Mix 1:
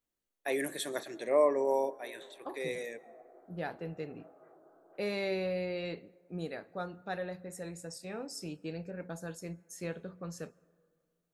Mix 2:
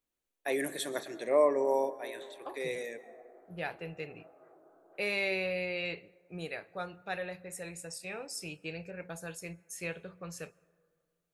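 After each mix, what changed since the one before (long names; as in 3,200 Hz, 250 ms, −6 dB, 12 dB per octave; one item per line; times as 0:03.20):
first voice: send +6.5 dB
second voice: add graphic EQ with 15 bands 250 Hz −10 dB, 2,500 Hz +11 dB, 10,000 Hz +7 dB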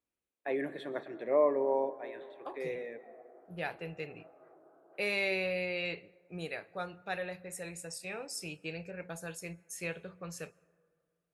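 first voice: add high-frequency loss of the air 490 metres
second voice: add high-pass filter 47 Hz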